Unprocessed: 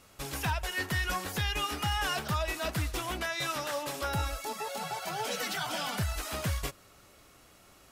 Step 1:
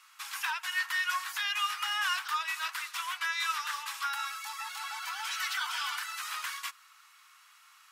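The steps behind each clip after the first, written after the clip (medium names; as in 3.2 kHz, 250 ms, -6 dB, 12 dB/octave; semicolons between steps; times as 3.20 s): steep high-pass 1 kHz 48 dB/octave; treble shelf 4.6 kHz -7 dB; trim +4 dB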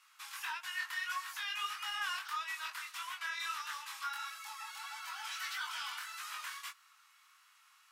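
in parallel at -9 dB: saturation -30 dBFS, distortion -12 dB; on the sum: chorus 1.6 Hz, delay 19.5 ms, depth 4.7 ms; trim -6 dB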